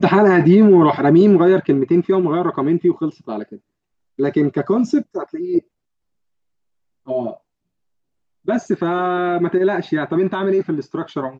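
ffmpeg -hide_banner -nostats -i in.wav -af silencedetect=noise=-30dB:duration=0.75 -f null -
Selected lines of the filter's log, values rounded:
silence_start: 5.59
silence_end: 7.08 | silence_duration: 1.49
silence_start: 7.34
silence_end: 8.48 | silence_duration: 1.14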